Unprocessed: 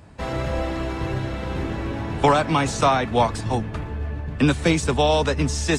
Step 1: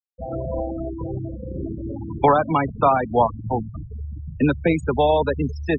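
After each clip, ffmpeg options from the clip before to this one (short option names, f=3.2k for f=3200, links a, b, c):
-af "afftfilt=real='re*gte(hypot(re,im),0.141)':imag='im*gte(hypot(re,im),0.141)':win_size=1024:overlap=0.75,lowpass=f=1.7k:p=1,lowshelf=f=240:g=-7.5,volume=3.5dB"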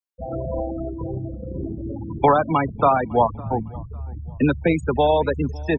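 -filter_complex "[0:a]asplit=2[a][b];[b]adelay=555,lowpass=f=3.9k:p=1,volume=-23.5dB,asplit=2[c][d];[d]adelay=555,lowpass=f=3.9k:p=1,volume=0.35[e];[a][c][e]amix=inputs=3:normalize=0"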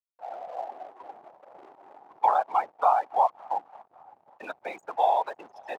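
-af "afftfilt=real='hypot(re,im)*cos(2*PI*random(0))':imag='hypot(re,im)*sin(2*PI*random(1))':win_size=512:overlap=0.75,aeval=exprs='sgn(val(0))*max(abs(val(0))-0.00596,0)':c=same,highpass=f=790:t=q:w=5.1,volume=-6.5dB"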